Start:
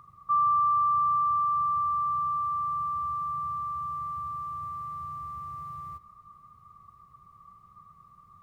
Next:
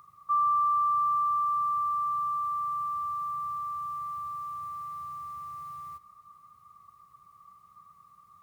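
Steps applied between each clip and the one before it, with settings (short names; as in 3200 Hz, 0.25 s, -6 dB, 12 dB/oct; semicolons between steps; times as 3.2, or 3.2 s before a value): tilt +2.5 dB/oct; gain -2 dB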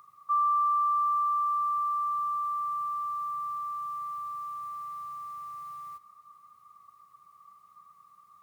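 HPF 340 Hz 6 dB/oct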